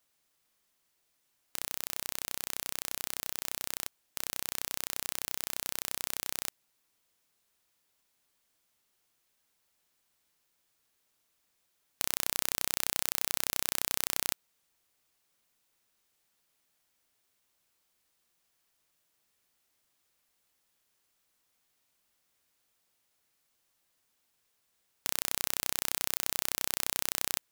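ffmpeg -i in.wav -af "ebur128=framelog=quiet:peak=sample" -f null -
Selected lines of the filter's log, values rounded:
Integrated loudness:
  I:         -32.7 LUFS
  Threshold: -42.7 LUFS
Loudness range:
  LRA:         9.6 LU
  Threshold: -55.0 LUFS
  LRA low:   -41.0 LUFS
  LRA high:  -31.4 LUFS
Sample peak:
  Peak:       -1.9 dBFS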